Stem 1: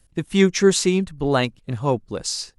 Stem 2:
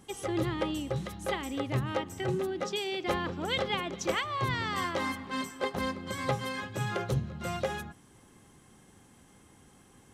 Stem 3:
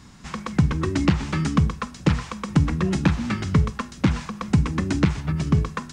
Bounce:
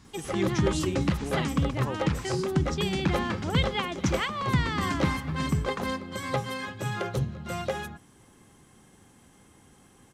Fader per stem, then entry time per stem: -14.5, +1.5, -7.5 dB; 0.00, 0.05, 0.00 s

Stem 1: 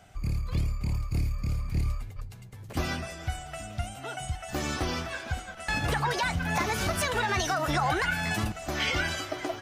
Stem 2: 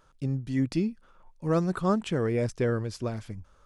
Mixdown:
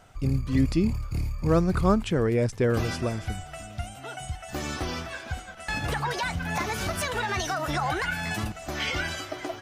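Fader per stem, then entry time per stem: -1.0, +3.0 dB; 0.00, 0.00 s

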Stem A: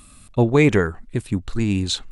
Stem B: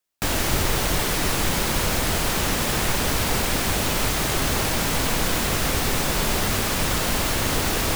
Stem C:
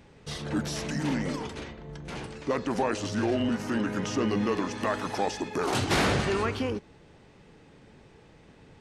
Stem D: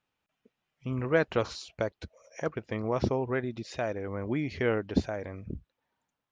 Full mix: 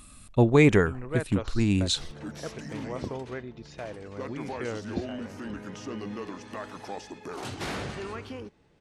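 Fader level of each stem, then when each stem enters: -3.0 dB, off, -9.5 dB, -7.0 dB; 0.00 s, off, 1.70 s, 0.00 s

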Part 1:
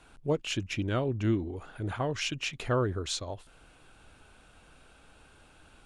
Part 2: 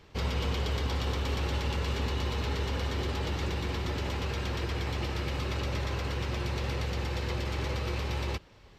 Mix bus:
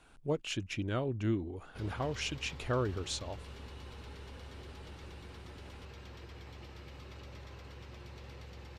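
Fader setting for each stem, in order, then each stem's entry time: -4.5, -17.0 dB; 0.00, 1.60 s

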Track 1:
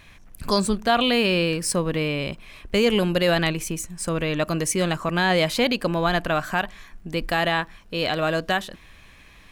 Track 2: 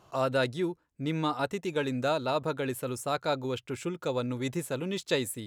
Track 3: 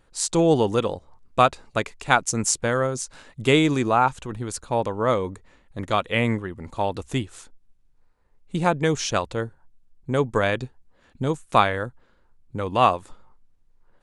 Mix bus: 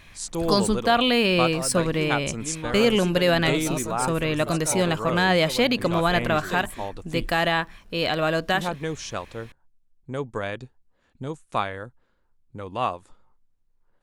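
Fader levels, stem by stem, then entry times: 0.0, -5.0, -8.0 dB; 0.00, 1.40, 0.00 s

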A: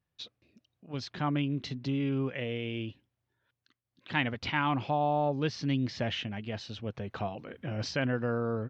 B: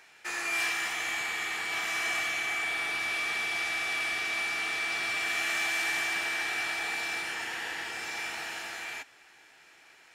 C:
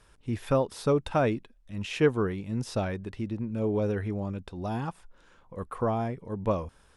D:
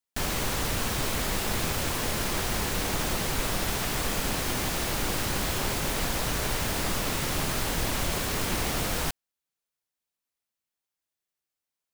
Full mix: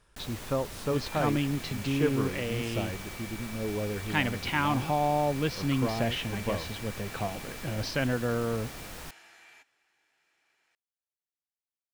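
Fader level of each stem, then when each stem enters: +1.5, -16.5, -5.0, -14.0 dB; 0.00, 0.60, 0.00, 0.00 s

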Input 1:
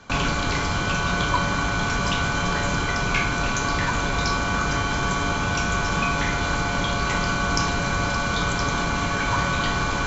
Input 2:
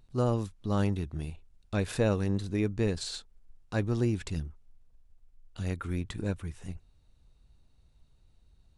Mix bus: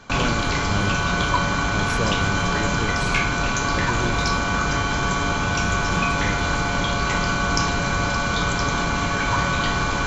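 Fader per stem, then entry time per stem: +1.5, -1.0 dB; 0.00, 0.00 s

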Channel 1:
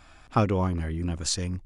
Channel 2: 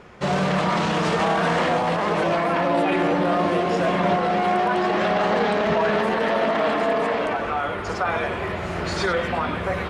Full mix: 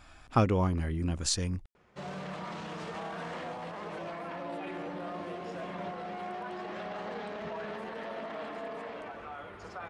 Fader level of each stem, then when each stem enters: -2.0, -18.5 dB; 0.00, 1.75 s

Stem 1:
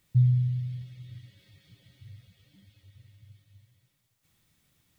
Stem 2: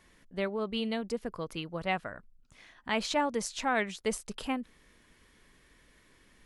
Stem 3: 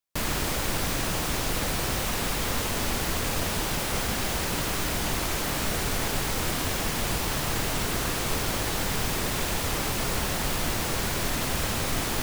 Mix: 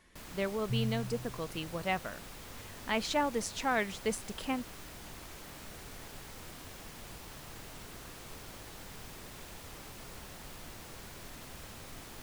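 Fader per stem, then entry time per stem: -13.0, -1.5, -20.0 dB; 0.55, 0.00, 0.00 s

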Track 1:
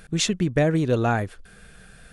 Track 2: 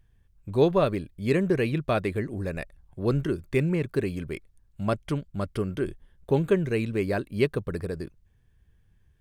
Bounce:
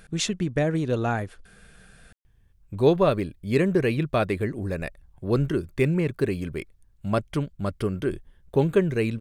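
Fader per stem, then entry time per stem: -3.5, +2.0 dB; 0.00, 2.25 s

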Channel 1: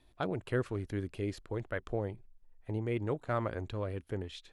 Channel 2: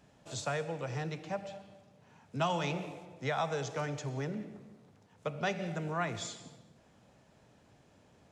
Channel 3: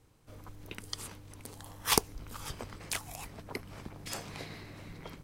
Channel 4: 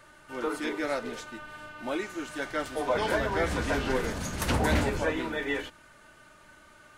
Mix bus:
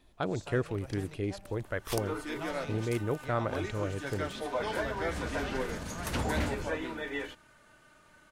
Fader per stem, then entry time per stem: +2.0, -10.5, -11.5, -5.5 dB; 0.00, 0.00, 0.00, 1.65 s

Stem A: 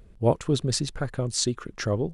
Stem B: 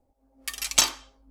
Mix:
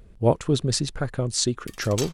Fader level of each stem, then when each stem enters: +2.0, -12.0 dB; 0.00, 1.20 s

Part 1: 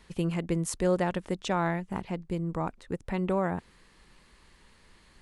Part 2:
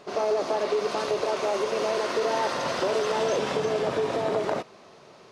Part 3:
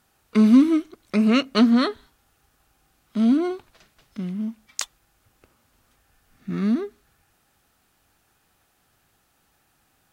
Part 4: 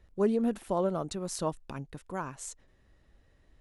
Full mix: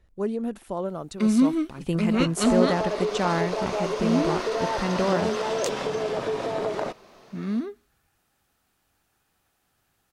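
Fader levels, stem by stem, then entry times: +3.0, -1.5, -5.5, -1.0 dB; 1.70, 2.30, 0.85, 0.00 s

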